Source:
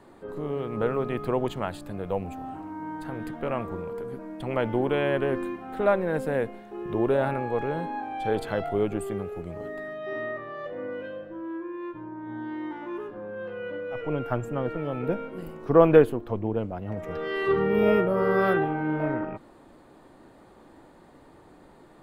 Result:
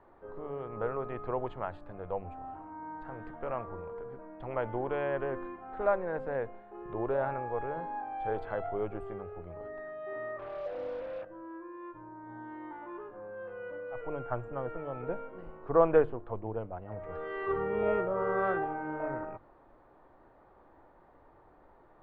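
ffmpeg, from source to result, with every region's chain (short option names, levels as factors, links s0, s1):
-filter_complex "[0:a]asettb=1/sr,asplit=3[s0][s1][s2];[s0]atrim=end=10.394[s3];[s1]atrim=start=10.39:end=11.25,asetpts=PTS-STARTPTS,afade=t=in:d=0.004:c=qsin,afade=t=out:st=0.856:d=0.004:c=qsin,lowpass=f=720:t=q:w=2.1,acrusher=bits=5:mix=0:aa=0.5[s4];[s2]atrim=start=11.246[s5];[s3][s4]acrossfade=d=0.004:c1=hsin:c2=qsin[s6];[s6][s5]acrossfade=d=0.004:c1=qsin:c2=hsin,lowpass=1200,equalizer=f=220:w=0.61:g=-14.5,bandreject=f=50:t=h:w=6,bandreject=f=100:t=h:w=6,bandreject=f=150:t=h:w=6"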